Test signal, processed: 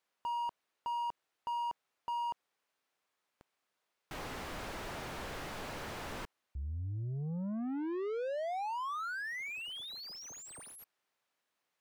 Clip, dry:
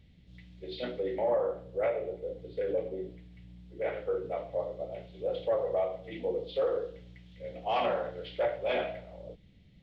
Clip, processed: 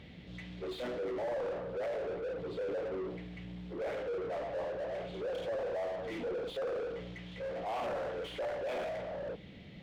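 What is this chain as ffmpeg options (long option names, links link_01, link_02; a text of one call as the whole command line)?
ffmpeg -i in.wav -filter_complex "[0:a]asoftclip=type=tanh:threshold=-32dB,asplit=2[link_01][link_02];[link_02]highpass=frequency=720:poles=1,volume=28dB,asoftclip=type=tanh:threshold=-32dB[link_03];[link_01][link_03]amix=inputs=2:normalize=0,lowpass=frequency=1200:poles=1,volume=-6dB" out.wav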